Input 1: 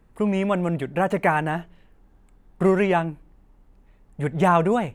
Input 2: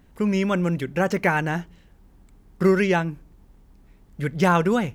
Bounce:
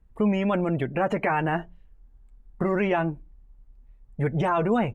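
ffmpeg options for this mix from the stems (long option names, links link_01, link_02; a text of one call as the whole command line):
ffmpeg -i stem1.wav -i stem2.wav -filter_complex "[0:a]alimiter=limit=-18dB:level=0:latency=1:release=54,volume=2.5dB[link_01];[1:a]adelay=8.2,volume=-11dB[link_02];[link_01][link_02]amix=inputs=2:normalize=0,afftdn=noise_reduction=16:noise_floor=-41" out.wav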